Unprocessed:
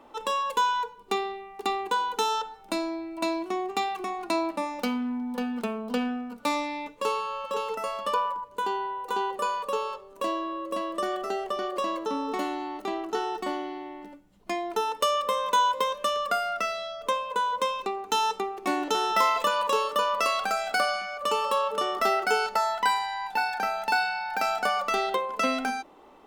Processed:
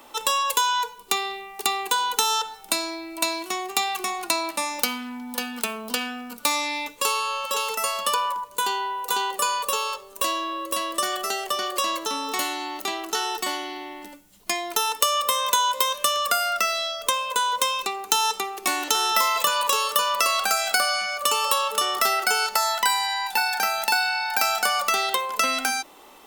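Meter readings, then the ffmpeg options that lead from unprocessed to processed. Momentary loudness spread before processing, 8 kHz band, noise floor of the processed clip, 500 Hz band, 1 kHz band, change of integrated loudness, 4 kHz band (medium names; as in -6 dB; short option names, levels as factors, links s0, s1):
7 LU, +15.0 dB, -47 dBFS, -2.0 dB, +2.0 dB, +4.5 dB, +9.5 dB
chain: -filter_complex "[0:a]acrossover=split=780|1700[s0][s1][s2];[s0]acompressor=threshold=0.0178:ratio=4[s3];[s1]acompressor=threshold=0.0355:ratio=4[s4];[s2]acompressor=threshold=0.0126:ratio=4[s5];[s3][s4][s5]amix=inputs=3:normalize=0,crystalizer=i=9:c=0"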